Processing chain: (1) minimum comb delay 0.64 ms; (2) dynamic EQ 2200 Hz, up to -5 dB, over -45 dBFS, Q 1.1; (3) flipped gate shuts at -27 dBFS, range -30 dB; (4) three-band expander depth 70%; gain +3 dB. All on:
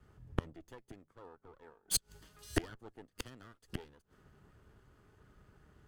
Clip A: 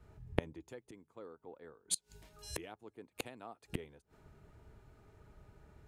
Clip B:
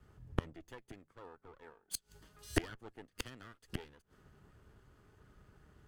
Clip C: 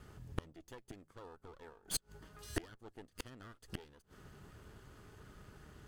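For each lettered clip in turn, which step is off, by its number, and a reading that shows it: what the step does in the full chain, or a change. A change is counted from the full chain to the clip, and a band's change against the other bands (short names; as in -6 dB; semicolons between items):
1, 500 Hz band +4.0 dB; 2, 8 kHz band -8.0 dB; 4, 8 kHz band -2.0 dB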